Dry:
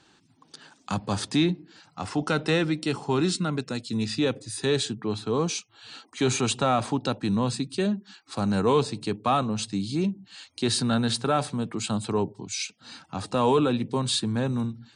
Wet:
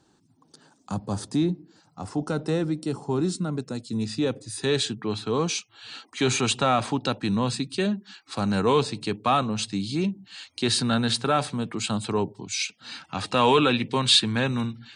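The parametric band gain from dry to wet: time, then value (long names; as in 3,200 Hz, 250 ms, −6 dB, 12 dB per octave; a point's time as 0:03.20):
parametric band 2,500 Hz 2 octaves
0:03.34 −13 dB
0:04.47 −3 dB
0:04.85 +4.5 dB
0:12.49 +4.5 dB
0:13.65 +13.5 dB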